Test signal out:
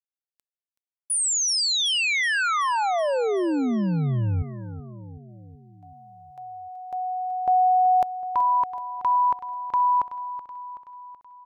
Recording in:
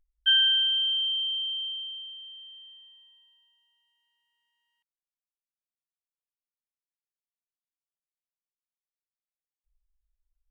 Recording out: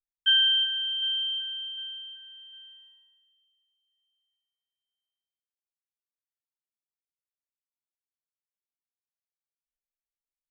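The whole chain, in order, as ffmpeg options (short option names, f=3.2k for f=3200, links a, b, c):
-af "agate=range=-33dB:threshold=-53dB:ratio=3:detection=peak,aecho=1:1:377|754|1131|1508|1885|2262:0.224|0.128|0.0727|0.0415|0.0236|0.0135"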